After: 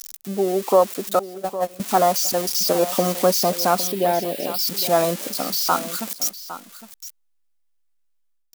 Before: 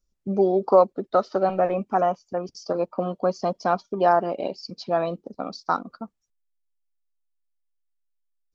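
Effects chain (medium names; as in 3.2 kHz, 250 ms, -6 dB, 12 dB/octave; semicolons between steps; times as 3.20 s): zero-crossing glitches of -19.5 dBFS; 1.19–1.80 s: gate -17 dBFS, range -24 dB; level rider gain up to 11 dB; 3.87–4.59 s: static phaser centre 2.8 kHz, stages 4; delay 809 ms -14 dB; trim -3 dB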